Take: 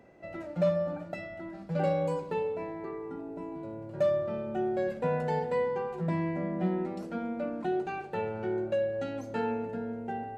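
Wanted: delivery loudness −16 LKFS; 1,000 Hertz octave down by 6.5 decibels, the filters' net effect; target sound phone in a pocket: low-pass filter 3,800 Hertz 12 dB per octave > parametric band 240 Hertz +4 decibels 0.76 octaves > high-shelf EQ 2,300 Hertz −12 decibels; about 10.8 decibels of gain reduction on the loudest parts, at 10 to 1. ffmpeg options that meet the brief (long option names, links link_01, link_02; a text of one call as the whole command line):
ffmpeg -i in.wav -af "equalizer=frequency=1000:width_type=o:gain=-7,acompressor=threshold=-35dB:ratio=10,lowpass=3800,equalizer=frequency=240:width_type=o:width=0.76:gain=4,highshelf=frequency=2300:gain=-12,volume=23dB" out.wav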